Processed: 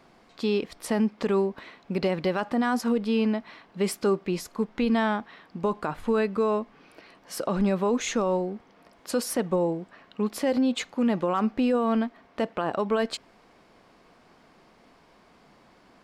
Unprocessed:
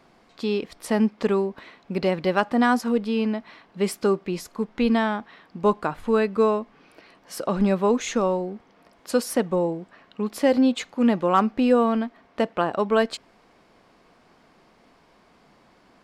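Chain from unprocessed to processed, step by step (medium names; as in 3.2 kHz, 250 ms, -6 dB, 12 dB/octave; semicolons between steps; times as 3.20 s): peak limiter -16.5 dBFS, peak gain reduction 8.5 dB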